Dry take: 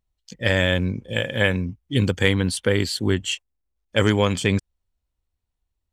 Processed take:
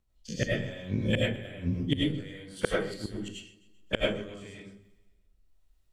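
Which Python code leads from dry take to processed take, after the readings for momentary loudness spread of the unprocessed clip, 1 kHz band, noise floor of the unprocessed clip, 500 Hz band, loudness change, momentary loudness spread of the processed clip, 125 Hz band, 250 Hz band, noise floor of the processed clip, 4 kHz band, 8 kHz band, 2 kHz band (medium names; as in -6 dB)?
7 LU, -12.0 dB, -80 dBFS, -9.5 dB, -9.5 dB, 15 LU, -10.0 dB, -8.5 dB, -68 dBFS, -10.5 dB, -14.0 dB, -12.0 dB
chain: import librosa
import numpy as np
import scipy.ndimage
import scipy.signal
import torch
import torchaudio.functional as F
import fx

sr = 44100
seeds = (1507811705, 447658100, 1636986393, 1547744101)

p1 = fx.spec_dilate(x, sr, span_ms=60)
p2 = fx.gate_flip(p1, sr, shuts_db=-11.0, range_db=-29)
p3 = fx.rotary(p2, sr, hz=1.0)
p4 = p3 + fx.echo_feedback(p3, sr, ms=130, feedback_pct=55, wet_db=-19.0, dry=0)
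y = fx.rev_freeverb(p4, sr, rt60_s=0.43, hf_ratio=0.35, predelay_ms=60, drr_db=-3.5)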